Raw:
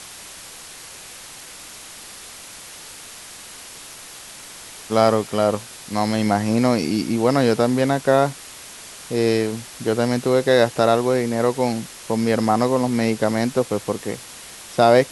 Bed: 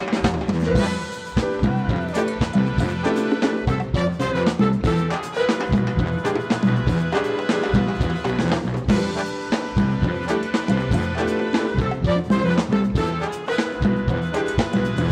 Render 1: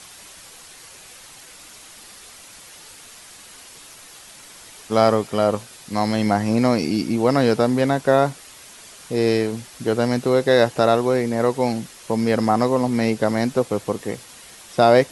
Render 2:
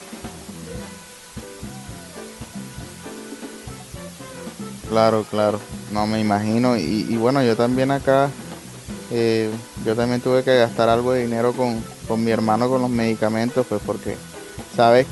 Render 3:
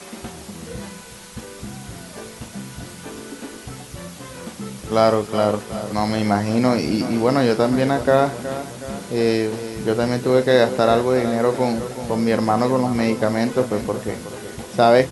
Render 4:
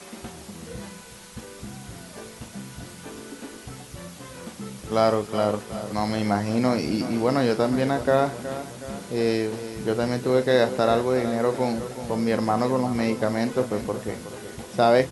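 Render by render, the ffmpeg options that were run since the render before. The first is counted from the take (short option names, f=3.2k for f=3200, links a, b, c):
-af "afftdn=nr=6:nf=-40"
-filter_complex "[1:a]volume=-15dB[a];[0:a][a]amix=inputs=2:normalize=0"
-filter_complex "[0:a]asplit=2[a][b];[b]adelay=39,volume=-12dB[c];[a][c]amix=inputs=2:normalize=0,aecho=1:1:369|738|1107|1476|1845:0.237|0.121|0.0617|0.0315|0.016"
-af "volume=-4.5dB"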